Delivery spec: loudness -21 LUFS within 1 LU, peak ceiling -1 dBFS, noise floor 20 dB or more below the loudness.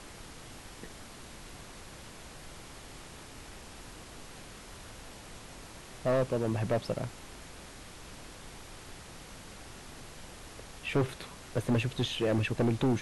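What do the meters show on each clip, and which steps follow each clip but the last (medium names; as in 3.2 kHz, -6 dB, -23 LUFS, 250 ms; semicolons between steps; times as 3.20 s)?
clipped samples 1.3%; clipping level -23.0 dBFS; noise floor -49 dBFS; noise floor target -52 dBFS; loudness -31.5 LUFS; peak level -23.0 dBFS; loudness target -21.0 LUFS
-> clip repair -23 dBFS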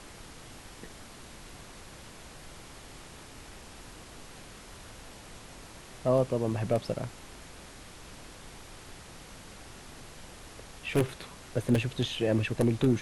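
clipped samples 0.0%; noise floor -49 dBFS; noise floor target -50 dBFS
-> noise print and reduce 6 dB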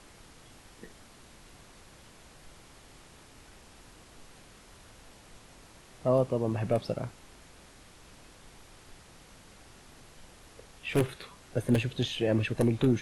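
noise floor -55 dBFS; loudness -30.0 LUFS; peak level -14.0 dBFS; loudness target -21.0 LUFS
-> trim +9 dB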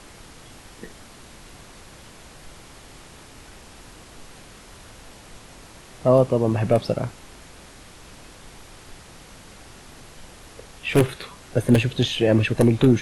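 loudness -21.0 LUFS; peak level -5.0 dBFS; noise floor -46 dBFS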